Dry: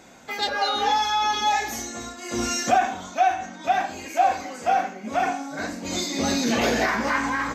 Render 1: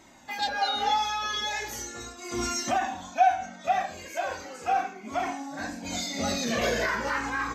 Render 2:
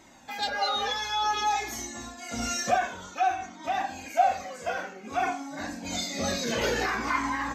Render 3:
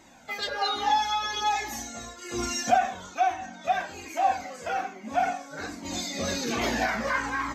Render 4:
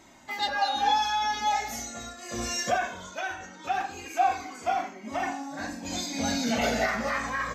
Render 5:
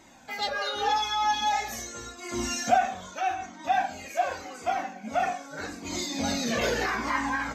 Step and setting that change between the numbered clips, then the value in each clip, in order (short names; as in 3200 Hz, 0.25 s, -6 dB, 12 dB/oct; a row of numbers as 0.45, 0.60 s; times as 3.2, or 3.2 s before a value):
cascading flanger, rate: 0.38, 0.55, 1.2, 0.2, 0.84 Hz